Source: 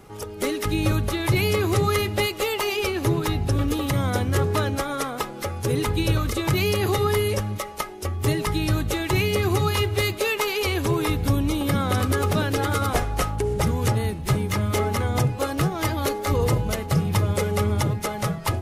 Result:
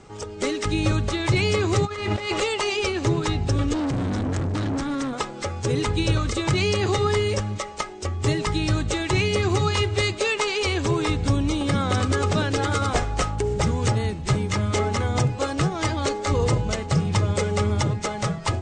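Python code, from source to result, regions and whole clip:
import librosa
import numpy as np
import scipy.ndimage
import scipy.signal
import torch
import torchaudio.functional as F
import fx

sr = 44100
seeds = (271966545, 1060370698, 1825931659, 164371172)

y = fx.chain(x, sr, fx.self_delay(depth_ms=0.053),
    fx.peak_eq(hz=1100.0, db=8.0, octaves=2.9),
    fx.over_compress(threshold_db=-28.0, ratio=-1.0), at=(1.85, 2.4))
y = fx.chain(y, sr, fx.low_shelf_res(hz=360.0, db=8.0, q=3.0),
    fx.tube_stage(drive_db=23.0, bias=0.75), at=(3.73, 5.13))
y = scipy.signal.sosfilt(scipy.signal.butter(12, 8500.0, 'lowpass', fs=sr, output='sos'), y)
y = fx.high_shelf(y, sr, hz=5100.0, db=4.5)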